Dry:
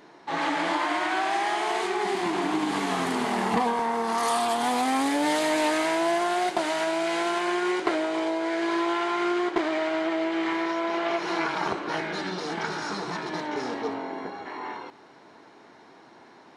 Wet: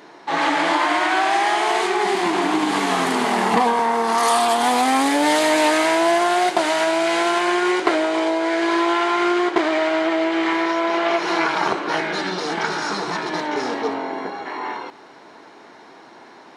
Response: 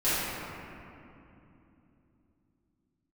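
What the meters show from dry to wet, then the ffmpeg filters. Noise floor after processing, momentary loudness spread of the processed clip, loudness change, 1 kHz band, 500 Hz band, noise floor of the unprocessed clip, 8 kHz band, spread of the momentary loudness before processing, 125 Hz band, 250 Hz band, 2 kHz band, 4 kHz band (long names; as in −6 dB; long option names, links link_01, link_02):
−45 dBFS, 8 LU, +7.5 dB, +7.5 dB, +7.0 dB, −52 dBFS, +8.0 dB, 8 LU, +3.5 dB, +6.0 dB, +8.0 dB, +8.0 dB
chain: -af "lowshelf=frequency=150:gain=-10.5,volume=8dB"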